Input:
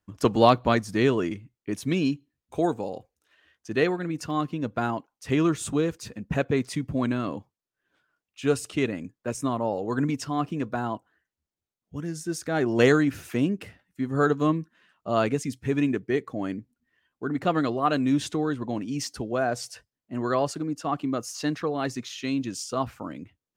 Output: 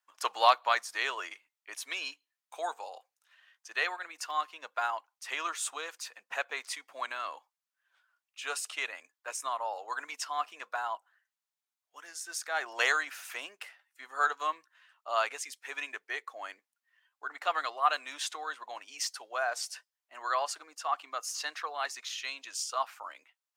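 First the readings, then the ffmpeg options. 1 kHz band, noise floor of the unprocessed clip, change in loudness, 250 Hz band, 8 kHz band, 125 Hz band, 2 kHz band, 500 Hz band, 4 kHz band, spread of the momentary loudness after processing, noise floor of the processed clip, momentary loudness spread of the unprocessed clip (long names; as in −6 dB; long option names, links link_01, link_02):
−2.0 dB, below −85 dBFS, −7.0 dB, −34.5 dB, 0.0 dB, below −40 dB, 0.0 dB, −14.0 dB, 0.0 dB, 15 LU, below −85 dBFS, 12 LU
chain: -af "highpass=frequency=810:width=0.5412,highpass=frequency=810:width=1.3066"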